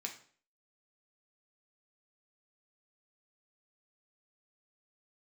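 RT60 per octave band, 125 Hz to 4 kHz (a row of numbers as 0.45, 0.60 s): 0.50, 0.50, 0.50, 0.45, 0.45, 0.45 s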